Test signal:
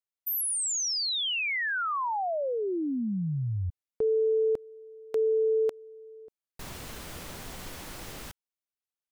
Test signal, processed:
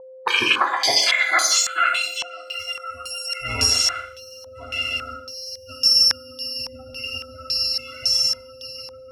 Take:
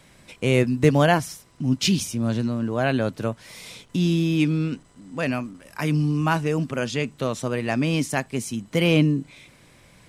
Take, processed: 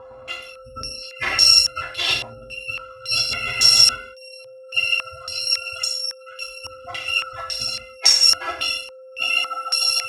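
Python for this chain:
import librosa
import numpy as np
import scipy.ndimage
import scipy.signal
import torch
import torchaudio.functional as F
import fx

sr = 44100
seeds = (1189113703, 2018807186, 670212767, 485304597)

p1 = fx.bit_reversed(x, sr, seeds[0], block=256)
p2 = fx.fold_sine(p1, sr, drive_db=7, ceiling_db=-3.5)
p3 = fx.low_shelf(p2, sr, hz=190.0, db=-10.0)
p4 = p3 + fx.echo_swell(p3, sr, ms=149, loudest=8, wet_db=-17, dry=0)
p5 = fx.over_compress(p4, sr, threshold_db=-20.0, ratio=-0.5)
p6 = scipy.signal.sosfilt(scipy.signal.butter(4, 41.0, 'highpass', fs=sr, output='sos'), p5)
p7 = fx.spec_gate(p6, sr, threshold_db=-20, keep='strong')
p8 = fx.rev_gated(p7, sr, seeds[1], gate_ms=220, shape='falling', drr_db=-0.5)
p9 = p8 + 10.0 ** (-40.0 / 20.0) * np.sin(2.0 * np.pi * 520.0 * np.arange(len(p8)) / sr)
p10 = fx.filter_held_lowpass(p9, sr, hz=3.6, low_hz=960.0, high_hz=5900.0)
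y = p10 * 10.0 ** (-2.0 / 20.0)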